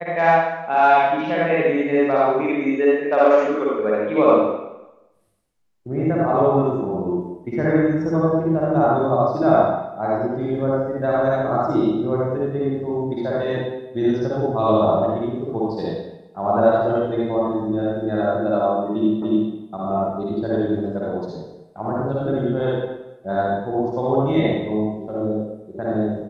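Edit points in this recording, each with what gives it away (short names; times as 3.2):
19.22 repeat of the last 0.29 s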